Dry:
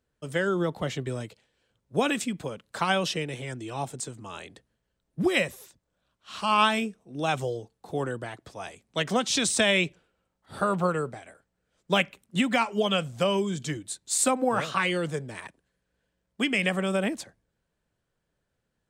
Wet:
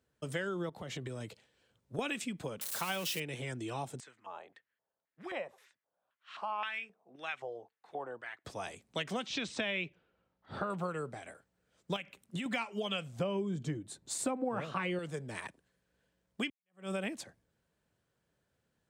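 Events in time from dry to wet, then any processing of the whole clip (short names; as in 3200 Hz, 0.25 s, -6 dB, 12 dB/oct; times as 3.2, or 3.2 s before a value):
0.69–1.99 compressor, threshold -35 dBFS
2.61–3.2 switching spikes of -22 dBFS
4–8.45 LFO band-pass square 1.9 Hz 780–1900 Hz
9.26–10.7 air absorption 170 m
11.96–12.46 compressor, threshold -29 dBFS
13.19–14.99 tilt shelf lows +8 dB, about 1500 Hz
16.5–16.92 fade in exponential
whole clip: HPF 63 Hz; dynamic EQ 2500 Hz, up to +6 dB, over -40 dBFS, Q 1.7; compressor 3:1, threshold -37 dBFS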